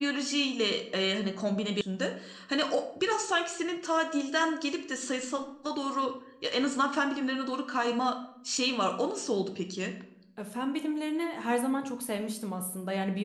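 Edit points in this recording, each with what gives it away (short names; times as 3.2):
1.81 sound cut off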